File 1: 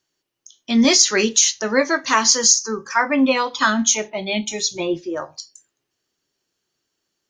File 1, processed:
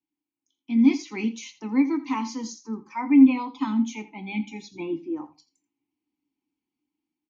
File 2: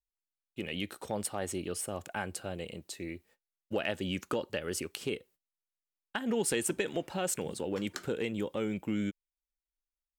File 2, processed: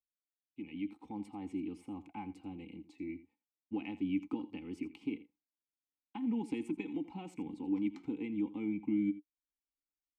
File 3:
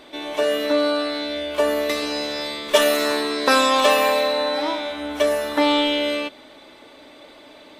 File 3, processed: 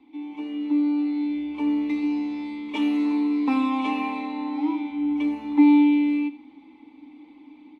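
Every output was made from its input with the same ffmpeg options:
ffmpeg -i in.wav -filter_complex "[0:a]acrossover=split=200|990[link_01][link_02][link_03];[link_01]acontrast=82[link_04];[link_04][link_02][link_03]amix=inputs=3:normalize=0,asplit=3[link_05][link_06][link_07];[link_05]bandpass=frequency=300:width_type=q:width=8,volume=0dB[link_08];[link_06]bandpass=frequency=870:width_type=q:width=8,volume=-6dB[link_09];[link_07]bandpass=frequency=2240:width_type=q:width=8,volume=-9dB[link_10];[link_08][link_09][link_10]amix=inputs=3:normalize=0,aecho=1:1:3.9:0.46,asplit=2[link_11][link_12];[link_12]aecho=0:1:83:0.15[link_13];[link_11][link_13]amix=inputs=2:normalize=0,dynaudnorm=framelen=640:gausssize=3:maxgain=5.5dB,lowshelf=frequency=140:gain=12,volume=-3.5dB" out.wav

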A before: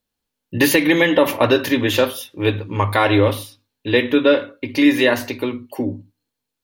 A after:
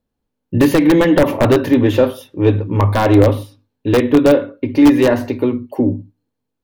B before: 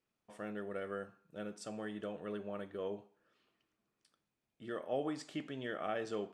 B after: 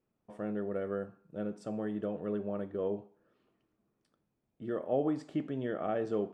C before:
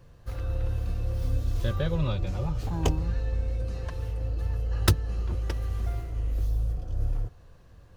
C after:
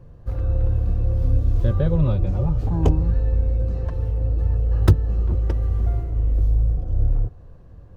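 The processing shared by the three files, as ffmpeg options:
ffmpeg -i in.wav -af "aeval=exprs='(mod(1.78*val(0)+1,2)-1)/1.78':channel_layout=same,acontrast=74,tiltshelf=frequency=1300:gain=9,volume=-7dB" out.wav

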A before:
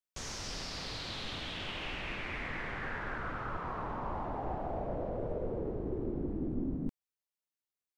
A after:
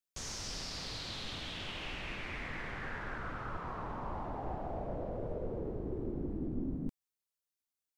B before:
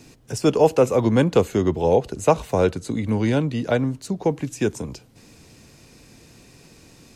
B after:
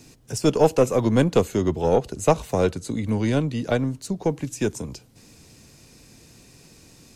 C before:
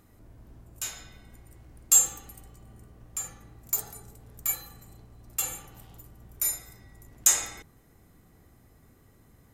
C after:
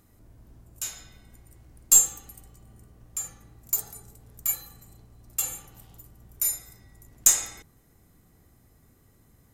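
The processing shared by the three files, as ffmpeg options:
ffmpeg -i in.wav -af "aeval=exprs='0.668*(cos(1*acos(clip(val(0)/0.668,-1,1)))-cos(1*PI/2))+0.0944*(cos(2*acos(clip(val(0)/0.668,-1,1)))-cos(2*PI/2))+0.00531*(cos(6*acos(clip(val(0)/0.668,-1,1)))-cos(6*PI/2))+0.0119*(cos(7*acos(clip(val(0)/0.668,-1,1)))-cos(7*PI/2))':channel_layout=same,bass=frequency=250:gain=2,treble=frequency=4000:gain=5,volume=-2dB" out.wav

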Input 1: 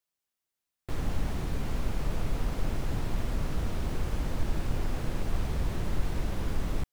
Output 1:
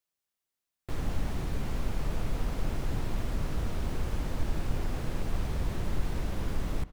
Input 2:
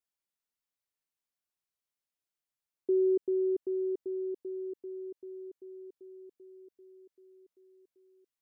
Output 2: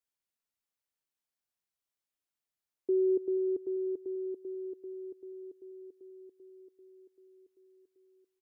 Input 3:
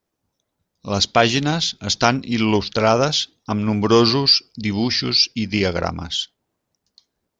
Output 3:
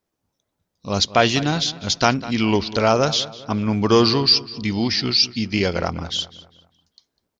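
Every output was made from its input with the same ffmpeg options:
ffmpeg -i in.wav -filter_complex "[0:a]asplit=2[link_01][link_02];[link_02]adelay=200,lowpass=frequency=3200:poles=1,volume=-16dB,asplit=2[link_03][link_04];[link_04]adelay=200,lowpass=frequency=3200:poles=1,volume=0.42,asplit=2[link_05][link_06];[link_06]adelay=200,lowpass=frequency=3200:poles=1,volume=0.42,asplit=2[link_07][link_08];[link_08]adelay=200,lowpass=frequency=3200:poles=1,volume=0.42[link_09];[link_01][link_03][link_05][link_07][link_09]amix=inputs=5:normalize=0,volume=-1dB" out.wav

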